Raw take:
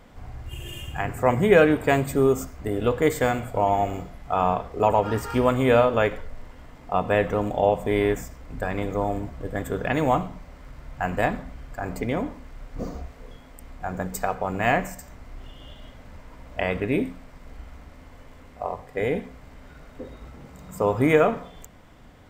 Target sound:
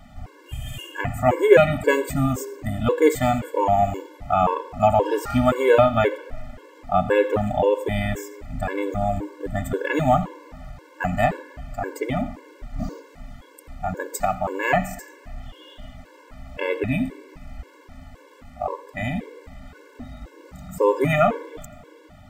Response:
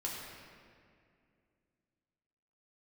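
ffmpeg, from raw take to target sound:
-filter_complex "[0:a]asplit=2[s0][s1];[1:a]atrim=start_sample=2205,adelay=83[s2];[s1][s2]afir=irnorm=-1:irlink=0,volume=0.0891[s3];[s0][s3]amix=inputs=2:normalize=0,afftfilt=real='re*gt(sin(2*PI*1.9*pts/sr)*(1-2*mod(floor(b*sr/1024/290),2)),0)':imag='im*gt(sin(2*PI*1.9*pts/sr)*(1-2*mod(floor(b*sr/1024/290),2)),0)':win_size=1024:overlap=0.75,volume=1.78"

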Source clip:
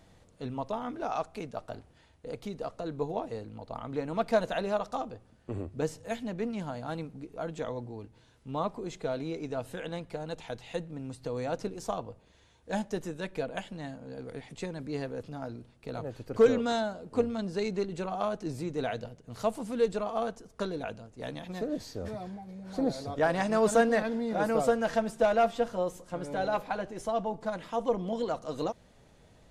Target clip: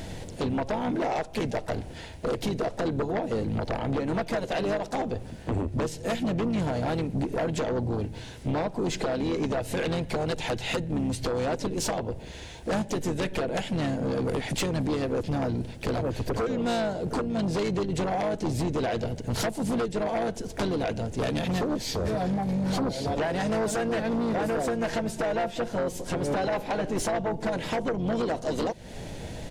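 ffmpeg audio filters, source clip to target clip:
-filter_complex "[0:a]acompressor=threshold=0.00794:ratio=10,asplit=4[s0][s1][s2][s3];[s1]asetrate=22050,aresample=44100,atempo=2,volume=0.224[s4];[s2]asetrate=33038,aresample=44100,atempo=1.33484,volume=0.398[s5];[s3]asetrate=58866,aresample=44100,atempo=0.749154,volume=0.141[s6];[s0][s4][s5][s6]amix=inputs=4:normalize=0,equalizer=f=1200:t=o:w=0.33:g=-12,aeval=exprs='0.0299*sin(PI/2*2.82*val(0)/0.0299)':c=same,volume=2.37"

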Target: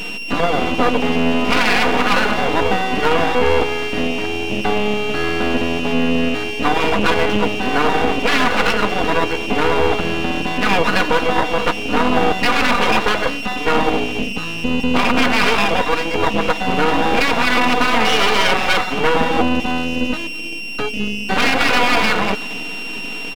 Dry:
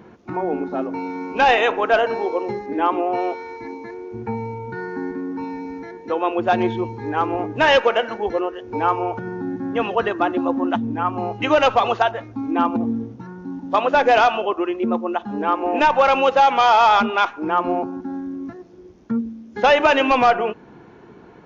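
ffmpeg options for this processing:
-filter_complex "[0:a]afftfilt=real='re*lt(hypot(re,im),0.398)':imag='im*lt(hypot(re,im),0.398)':win_size=1024:overlap=0.75,acrossover=split=170 3600:gain=0.0708 1 0.0708[s0][s1][s2];[s0][s1][s2]amix=inputs=3:normalize=0,aecho=1:1:3.8:0.79,asplit=2[s3][s4];[s4]adelay=200,highpass=300,lowpass=3400,asoftclip=type=hard:threshold=0.112,volume=0.112[s5];[s3][s5]amix=inputs=2:normalize=0,asplit=2[s6][s7];[s7]asetrate=29433,aresample=44100,atempo=1.49831,volume=0.141[s8];[s6][s8]amix=inputs=2:normalize=0,aeval=exprs='val(0)+0.0158*sin(2*PI*3000*n/s)':c=same,asetrate=40517,aresample=44100,aeval=exprs='max(val(0),0)':c=same,alimiter=level_in=6.31:limit=0.891:release=50:level=0:latency=1,volume=0.891"

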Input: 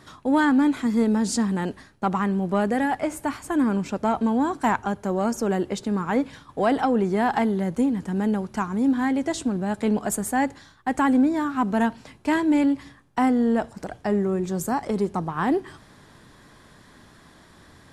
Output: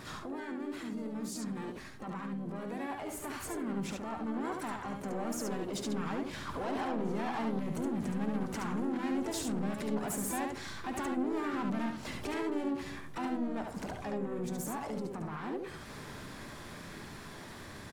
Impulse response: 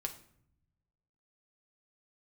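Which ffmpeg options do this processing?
-filter_complex "[0:a]acompressor=threshold=0.0126:ratio=4,alimiter=level_in=4.47:limit=0.0631:level=0:latency=1:release=22,volume=0.224,dynaudnorm=f=520:g=17:m=2.51,asoftclip=type=tanh:threshold=0.0178,asplit=4[s0][s1][s2][s3];[s1]asetrate=35002,aresample=44100,atempo=1.25992,volume=0.141[s4];[s2]asetrate=58866,aresample=44100,atempo=0.749154,volume=0.501[s5];[s3]asetrate=88200,aresample=44100,atempo=0.5,volume=0.158[s6];[s0][s4][s5][s6]amix=inputs=4:normalize=0,aecho=1:1:71:0.631,asplit=2[s7][s8];[1:a]atrim=start_sample=2205[s9];[s8][s9]afir=irnorm=-1:irlink=0,volume=0.316[s10];[s7][s10]amix=inputs=2:normalize=0"

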